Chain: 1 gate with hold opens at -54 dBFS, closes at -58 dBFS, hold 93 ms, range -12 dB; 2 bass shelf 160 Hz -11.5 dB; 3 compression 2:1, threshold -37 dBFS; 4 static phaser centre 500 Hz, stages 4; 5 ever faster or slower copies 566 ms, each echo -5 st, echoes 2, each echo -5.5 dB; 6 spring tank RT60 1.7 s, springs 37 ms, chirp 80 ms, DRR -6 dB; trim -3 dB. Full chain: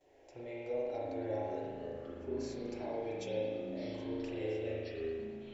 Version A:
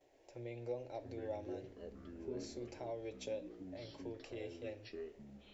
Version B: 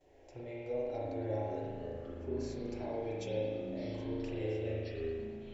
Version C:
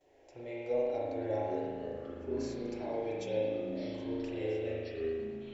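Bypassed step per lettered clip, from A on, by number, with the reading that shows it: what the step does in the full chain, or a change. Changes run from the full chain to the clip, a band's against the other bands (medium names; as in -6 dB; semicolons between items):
6, 4 kHz band +3.5 dB; 2, 125 Hz band +6.5 dB; 3, momentary loudness spread change +1 LU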